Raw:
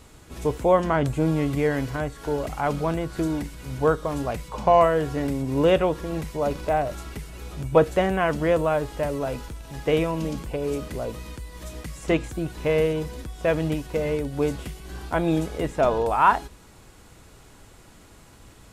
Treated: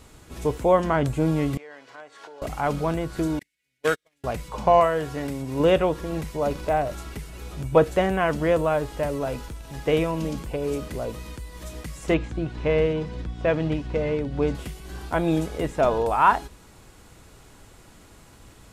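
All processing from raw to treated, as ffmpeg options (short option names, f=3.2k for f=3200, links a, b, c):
-filter_complex "[0:a]asettb=1/sr,asplit=3[a][b][c];[a]atrim=end=1.574[d];[b]atrim=start=1.57:end=2.42,asetpts=PTS-STARTPTS,afade=t=in:d=0.004:c=qsin,afade=t=out:st=0.846:d=0.004:c=qsin,acompressor=threshold=-34dB:ratio=8:attack=3.2:release=140:knee=1:detection=peak,highpass=590,lowpass=5.5k[e];[c]atrim=start=2.416[f];[d][e]acrossfade=d=0.004:c1=hsin:c2=qsin[g];[g][f]acrossfade=d=0.004:c1=qsin:c2=hsin,asettb=1/sr,asplit=3[h][i][j];[h]atrim=end=3.394[k];[i]atrim=start=3.39:end=4.24,asetpts=PTS-STARTPTS,afade=t=in:d=0.004:c=qsin,afade=t=out:st=0.846:d=0.004:c=qsin,highpass=f=310:p=1,highshelf=f=1.5k:t=q:w=3:g=11,agate=range=-44dB:threshold=-24dB:ratio=16:release=100:detection=peak[l];[j]atrim=start=4.236[m];[k][l]acrossfade=d=0.004:c1=hsin:c2=qsin[n];[n][m]acrossfade=d=0.004:c1=qsin:c2=hsin,asettb=1/sr,asplit=3[o][p][q];[o]atrim=end=4.804[r];[p]atrim=start=4.8:end=5.6,asetpts=PTS-STARTPTS,afade=t=in:d=0.004:c=qsin,afade=t=out:st=0.796:d=0.004:c=qsin,highpass=f=94:p=1,equalizer=f=280:w=0.58:g=-4[s];[q]atrim=start=5.596[t];[r][s]acrossfade=d=0.004:c1=hsin:c2=qsin[u];[u][t]acrossfade=d=0.004:c1=qsin:c2=hsin,asettb=1/sr,asplit=3[v][w][x];[v]atrim=end=12.144[y];[w]atrim=start=12.14:end=14.55,asetpts=PTS-STARTPTS,afade=t=in:d=0.004:c=qsin,afade=t=out:st=2.406:d=0.004:c=qsin,lowpass=4.2k,aeval=exprs='val(0)+0.02*(sin(2*PI*60*n/s)+sin(2*PI*2*60*n/s)/2+sin(2*PI*3*60*n/s)/3+sin(2*PI*4*60*n/s)/4+sin(2*PI*5*60*n/s)/5)':c=same[z];[x]atrim=start=14.546[aa];[y][z]acrossfade=d=0.004:c1=hsin:c2=qsin[ab];[ab][aa]acrossfade=d=0.004:c1=qsin:c2=hsin"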